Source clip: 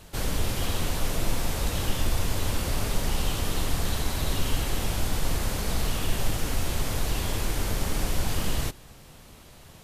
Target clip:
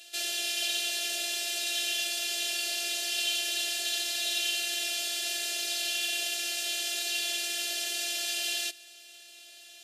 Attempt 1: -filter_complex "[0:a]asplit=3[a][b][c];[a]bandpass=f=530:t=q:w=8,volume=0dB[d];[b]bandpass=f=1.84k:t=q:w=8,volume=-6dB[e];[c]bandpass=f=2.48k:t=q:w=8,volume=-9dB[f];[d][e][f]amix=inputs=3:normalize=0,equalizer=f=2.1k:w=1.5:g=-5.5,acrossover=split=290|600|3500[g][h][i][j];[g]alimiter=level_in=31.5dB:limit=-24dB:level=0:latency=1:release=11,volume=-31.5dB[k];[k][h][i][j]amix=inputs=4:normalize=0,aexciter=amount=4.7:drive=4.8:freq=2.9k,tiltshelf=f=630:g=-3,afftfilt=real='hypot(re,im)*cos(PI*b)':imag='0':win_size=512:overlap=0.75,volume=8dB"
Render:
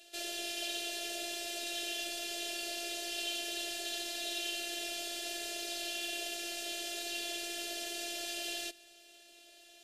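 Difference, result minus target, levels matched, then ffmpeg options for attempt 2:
500 Hz band +9.0 dB
-filter_complex "[0:a]asplit=3[a][b][c];[a]bandpass=f=530:t=q:w=8,volume=0dB[d];[b]bandpass=f=1.84k:t=q:w=8,volume=-6dB[e];[c]bandpass=f=2.48k:t=q:w=8,volume=-9dB[f];[d][e][f]amix=inputs=3:normalize=0,equalizer=f=2.1k:w=1.5:g=-5.5,acrossover=split=290|600|3500[g][h][i][j];[g]alimiter=level_in=31.5dB:limit=-24dB:level=0:latency=1:release=11,volume=-31.5dB[k];[k][h][i][j]amix=inputs=4:normalize=0,aexciter=amount=4.7:drive=4.8:freq=2.9k,tiltshelf=f=630:g=-12,afftfilt=real='hypot(re,im)*cos(PI*b)':imag='0':win_size=512:overlap=0.75,volume=8dB"

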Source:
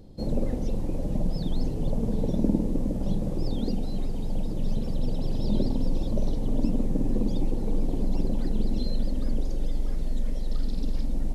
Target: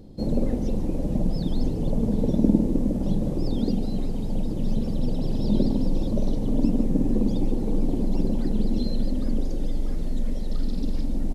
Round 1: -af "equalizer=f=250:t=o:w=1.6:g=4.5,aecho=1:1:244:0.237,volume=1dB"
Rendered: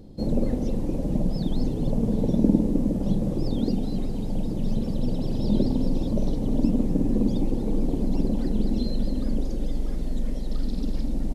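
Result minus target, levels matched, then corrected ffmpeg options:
echo 98 ms late
-af "equalizer=f=250:t=o:w=1.6:g=4.5,aecho=1:1:146:0.237,volume=1dB"

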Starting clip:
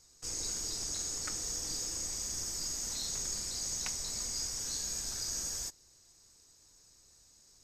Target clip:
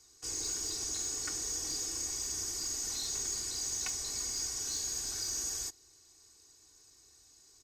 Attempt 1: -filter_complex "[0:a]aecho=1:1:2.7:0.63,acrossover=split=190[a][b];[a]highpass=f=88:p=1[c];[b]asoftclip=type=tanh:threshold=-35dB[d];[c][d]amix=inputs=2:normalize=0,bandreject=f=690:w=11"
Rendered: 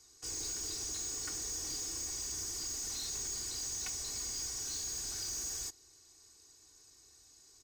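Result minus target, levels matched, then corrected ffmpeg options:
soft clip: distortion +13 dB
-filter_complex "[0:a]aecho=1:1:2.7:0.63,acrossover=split=190[a][b];[a]highpass=f=88:p=1[c];[b]asoftclip=type=tanh:threshold=-25dB[d];[c][d]amix=inputs=2:normalize=0,bandreject=f=690:w=11"

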